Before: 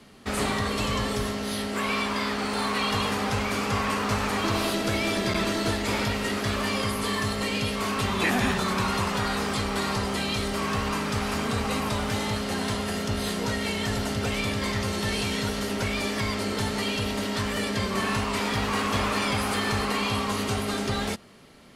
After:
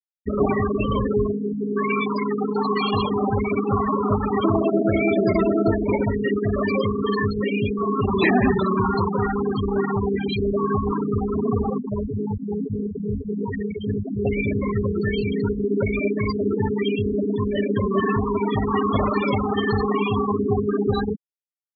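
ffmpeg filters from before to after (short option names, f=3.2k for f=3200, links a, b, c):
-filter_complex "[0:a]asettb=1/sr,asplit=3[a][b][c];[a]atrim=end=11.704[d];[b]atrim=start=11.7:end=14.25,asetpts=PTS-STARTPTS,afade=t=in:d=0.004:c=qsin,afade=t=out:st=2.546:d=0.004:c=qsin,flanger=delay=19:depth=5.3:speed=1.8[e];[c]atrim=start=14.246[f];[d][e]acrossfade=d=0.004:c1=hsin:c2=qsin[g];[g][f]acrossfade=d=0.004:c1=qsin:c2=hsin,bandreject=f=480:w=12,afftfilt=real='re*gte(hypot(re,im),0.126)':imag='im*gte(hypot(re,im),0.126)':win_size=1024:overlap=0.75,equalizer=f=440:t=o:w=1.4:g=8,volume=5dB"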